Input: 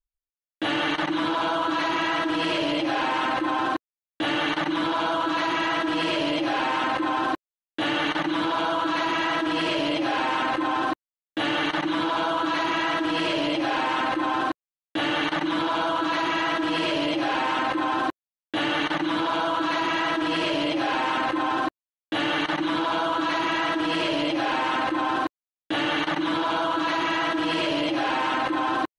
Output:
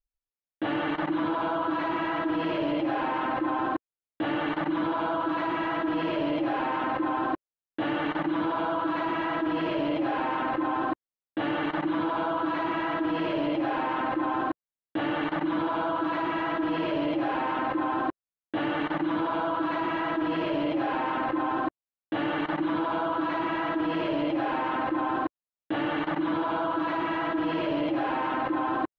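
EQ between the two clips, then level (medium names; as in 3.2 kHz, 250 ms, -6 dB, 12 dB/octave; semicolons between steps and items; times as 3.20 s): tape spacing loss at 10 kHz 35 dB; treble shelf 4.2 kHz -5 dB; 0.0 dB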